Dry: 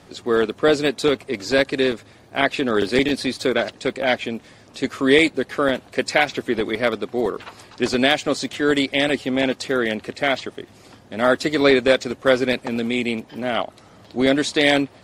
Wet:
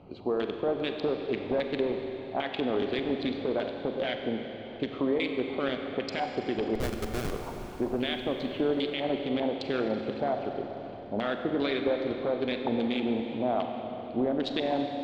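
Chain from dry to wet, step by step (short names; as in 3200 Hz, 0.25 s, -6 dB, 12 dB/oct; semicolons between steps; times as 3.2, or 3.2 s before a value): Wiener smoothing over 25 samples; compressor 16:1, threshold -23 dBFS, peak gain reduction 14.5 dB; LFO low-pass square 2.5 Hz 850–3400 Hz; 6.75–7.32 Schmitt trigger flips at -24.5 dBFS; limiter -17 dBFS, peak gain reduction 11 dB; Schroeder reverb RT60 3.8 s, combs from 32 ms, DRR 4 dB; gain -2 dB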